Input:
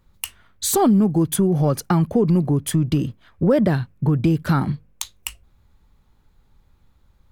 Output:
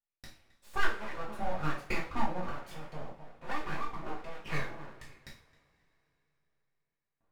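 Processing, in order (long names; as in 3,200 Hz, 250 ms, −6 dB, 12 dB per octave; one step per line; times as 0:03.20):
noise gate with hold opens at −44 dBFS
in parallel at −12 dB: wrap-around overflow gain 24.5 dB
on the sum: tape delay 264 ms, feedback 29%, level −9 dB, low-pass 1,900 Hz
LFO wah 1.2 Hz 530–1,200 Hz, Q 3
full-wave rectification
coupled-rooms reverb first 0.38 s, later 3.7 s, from −28 dB, DRR −5.5 dB
level −7.5 dB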